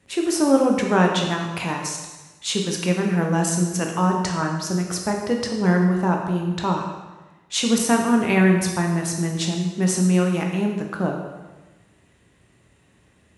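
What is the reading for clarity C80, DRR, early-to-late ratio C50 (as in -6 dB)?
6.0 dB, 1.0 dB, 4.0 dB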